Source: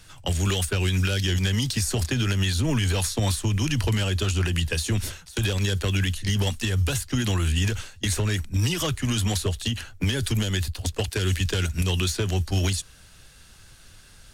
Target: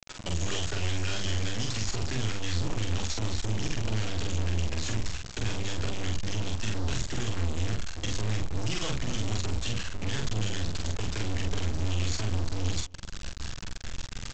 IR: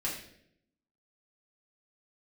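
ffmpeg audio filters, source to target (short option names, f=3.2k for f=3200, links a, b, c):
-filter_complex "[0:a]asubboost=boost=5:cutoff=87,asplit=2[a][b];[b]acompressor=threshold=-35dB:ratio=4,volume=-1.5dB[c];[a][c]amix=inputs=2:normalize=0,asoftclip=type=hard:threshold=-21.5dB,aresample=16000,acrusher=bits=3:dc=4:mix=0:aa=0.000001,aresample=44100,asplit=2[d][e];[e]adelay=46,volume=-3dB[f];[d][f]amix=inputs=2:normalize=0,asplit=2[g][h];[h]adelay=262.4,volume=-25dB,highshelf=f=4k:g=-5.9[i];[g][i]amix=inputs=2:normalize=0,volume=-2.5dB"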